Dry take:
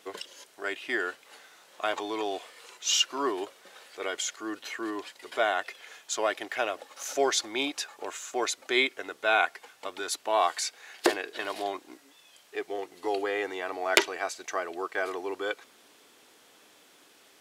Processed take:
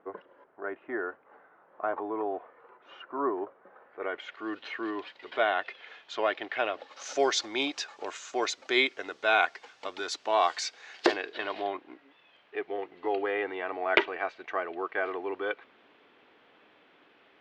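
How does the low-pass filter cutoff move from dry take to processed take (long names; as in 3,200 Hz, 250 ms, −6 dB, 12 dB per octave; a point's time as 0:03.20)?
low-pass filter 24 dB per octave
0:03.86 1,400 Hz
0:04.49 3,700 Hz
0:06.67 3,700 Hz
0:07.11 6,100 Hz
0:10.94 6,100 Hz
0:11.79 2,900 Hz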